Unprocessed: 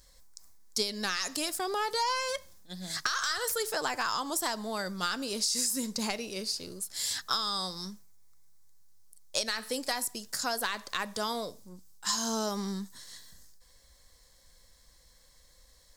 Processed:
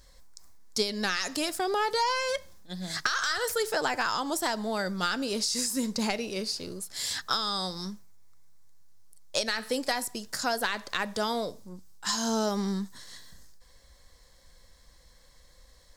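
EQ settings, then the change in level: dynamic bell 1.1 kHz, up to -6 dB, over -52 dBFS, Q 5.6; treble shelf 4.8 kHz -8.5 dB; +5.0 dB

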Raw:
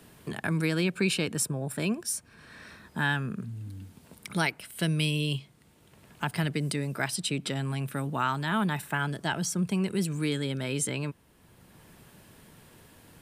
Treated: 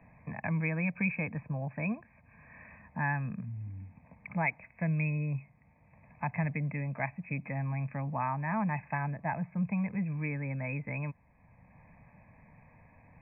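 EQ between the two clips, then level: brick-wall FIR low-pass 2.6 kHz; static phaser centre 1.4 kHz, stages 6; 0.0 dB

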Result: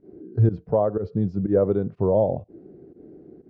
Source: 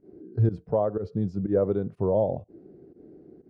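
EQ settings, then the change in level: distance through air 140 m; +4.0 dB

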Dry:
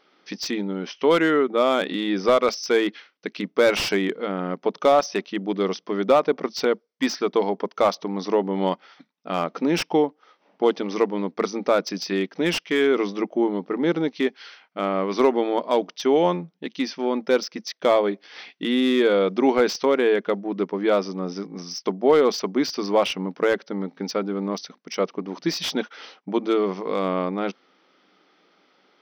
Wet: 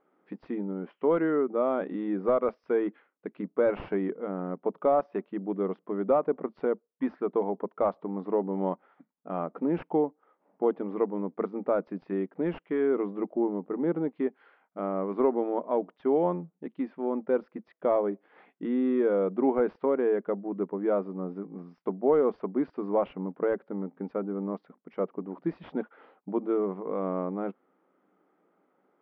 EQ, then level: low-pass 1.2 kHz 12 dB/octave; distance through air 360 m; -5.0 dB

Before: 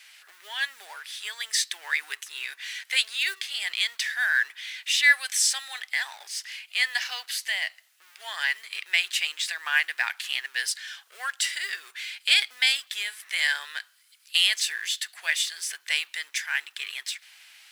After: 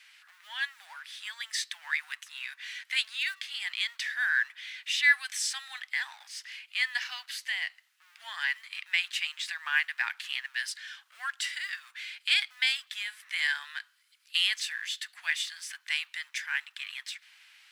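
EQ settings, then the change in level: high-pass 900 Hz 24 dB/octave; treble shelf 5.1 kHz -10.5 dB; -2.5 dB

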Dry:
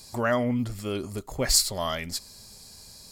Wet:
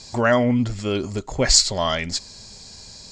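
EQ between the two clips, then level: elliptic low-pass 7.2 kHz, stop band 80 dB; band-stop 1.2 kHz, Q 15; +8.0 dB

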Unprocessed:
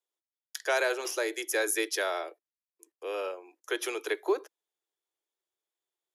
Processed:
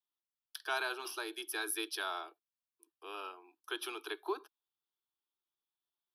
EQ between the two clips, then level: static phaser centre 2 kHz, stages 6; -2.5 dB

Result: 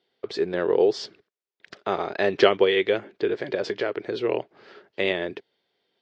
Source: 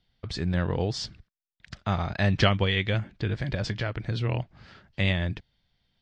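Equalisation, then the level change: resonant high-pass 400 Hz, resonance Q 4.9; distance through air 78 m; +2.0 dB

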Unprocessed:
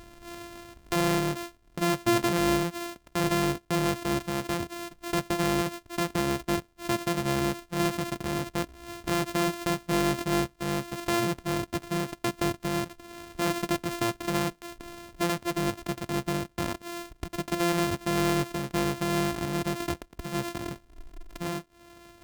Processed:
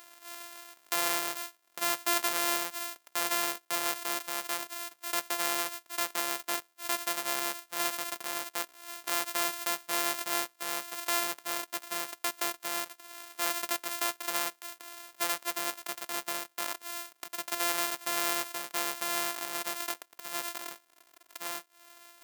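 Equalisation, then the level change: high-pass 800 Hz 12 dB/octave; treble shelf 8 kHz +11.5 dB; -1.5 dB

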